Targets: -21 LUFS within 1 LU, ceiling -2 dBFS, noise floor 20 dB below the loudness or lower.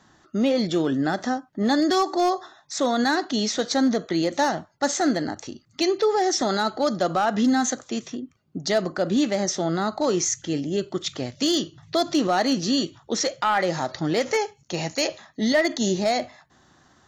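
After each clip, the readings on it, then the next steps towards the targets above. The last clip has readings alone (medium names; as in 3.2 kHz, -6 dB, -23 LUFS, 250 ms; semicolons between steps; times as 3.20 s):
clipped samples 0.4%; clipping level -14.0 dBFS; loudness -24.0 LUFS; peak level -14.0 dBFS; loudness target -21.0 LUFS
-> clip repair -14 dBFS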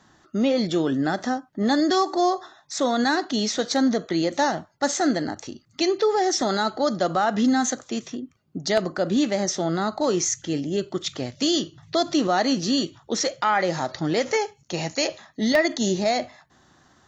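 clipped samples 0.0%; loudness -23.5 LUFS; peak level -5.0 dBFS; loudness target -21.0 LUFS
-> trim +2.5 dB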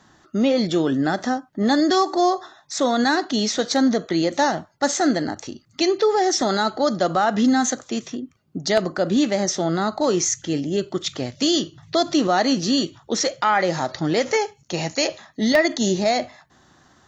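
loudness -21.0 LUFS; peak level -2.5 dBFS; noise floor -58 dBFS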